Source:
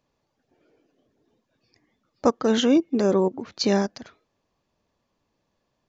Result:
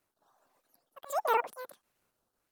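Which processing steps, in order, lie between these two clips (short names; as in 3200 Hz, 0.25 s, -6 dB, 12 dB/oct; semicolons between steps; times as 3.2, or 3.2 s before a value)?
trilling pitch shifter +1.5 st, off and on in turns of 0.214 s; tone controls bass 0 dB, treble +9 dB; auto swell 0.799 s; requantised 12-bit, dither none; rotary speaker horn 0.6 Hz; speed mistake 33 rpm record played at 78 rpm; gain -3.5 dB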